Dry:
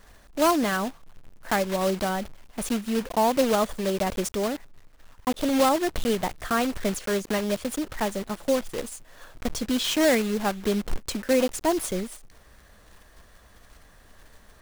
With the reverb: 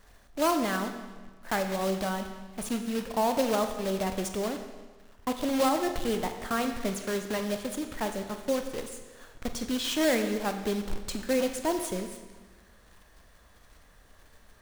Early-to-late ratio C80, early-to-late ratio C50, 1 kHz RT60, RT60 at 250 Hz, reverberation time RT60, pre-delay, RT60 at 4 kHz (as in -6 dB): 9.0 dB, 8.0 dB, 1.4 s, 1.4 s, 1.4 s, 26 ms, 1.3 s